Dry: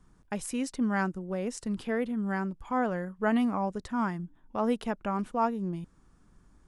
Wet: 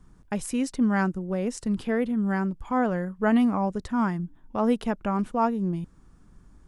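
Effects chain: bass shelf 300 Hz +5 dB; trim +2.5 dB

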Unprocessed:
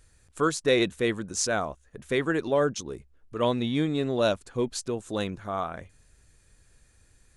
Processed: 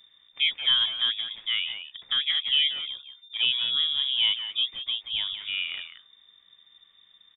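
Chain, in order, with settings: low-pass that closes with the level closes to 1.6 kHz, closed at -24.5 dBFS; speakerphone echo 180 ms, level -8 dB; frequency inversion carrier 3.6 kHz

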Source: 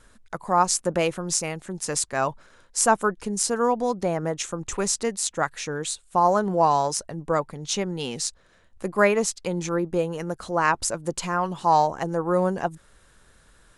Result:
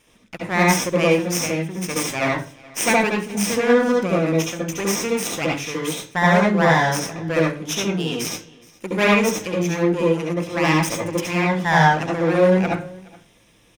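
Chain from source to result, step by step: comb filter that takes the minimum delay 0.34 ms; delay 420 ms -23.5 dB; reverberation RT60 0.40 s, pre-delay 66 ms, DRR -2 dB

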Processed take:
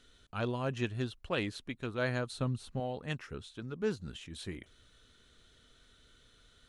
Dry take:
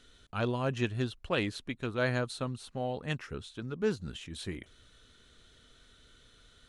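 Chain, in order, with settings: 2.32–2.80 s: bass shelf 230 Hz +10 dB; trim -3 dB

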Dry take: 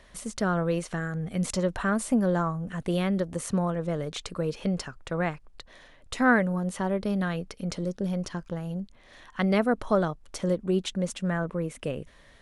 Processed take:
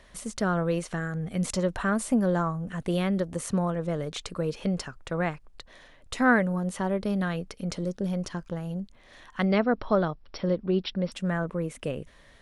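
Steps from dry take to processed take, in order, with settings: 9.45–11.12 s: brick-wall FIR low-pass 5.7 kHz

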